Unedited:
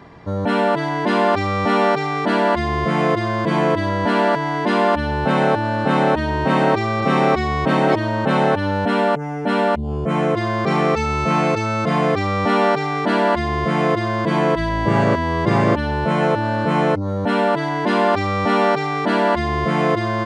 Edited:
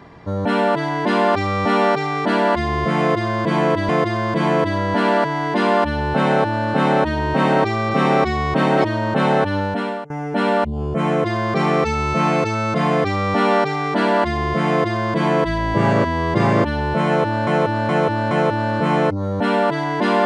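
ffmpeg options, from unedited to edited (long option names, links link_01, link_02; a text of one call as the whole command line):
ffmpeg -i in.wav -filter_complex "[0:a]asplit=6[link_01][link_02][link_03][link_04][link_05][link_06];[link_01]atrim=end=3.892[link_07];[link_02]atrim=start=2.998:end=9.21,asetpts=PTS-STARTPTS,afade=type=out:start_time=5.682:duration=0.53:silence=0.105925[link_08];[link_03]atrim=start=9.21:end=16.582,asetpts=PTS-STARTPTS,afade=type=in:duration=0.004:curve=hsin:silence=0.105925[link_09];[link_04]atrim=start=16.158:end=16.582[link_10];[link_05]atrim=start=16.158:end=16.582[link_11];[link_06]atrim=start=16.158[link_12];[link_08][link_09]concat=n=2:v=0:a=1[link_13];[link_07][link_13]acrossfade=duration=0.004:curve1=hsin:curve2=hsin[link_14];[link_14][link_10]acrossfade=duration=0.004:curve1=hsin:curve2=hsin[link_15];[link_15][link_11]acrossfade=duration=0.004:curve1=hsin:curve2=hsin[link_16];[link_16][link_12]acrossfade=duration=0.004:curve1=hsin:curve2=hsin" out.wav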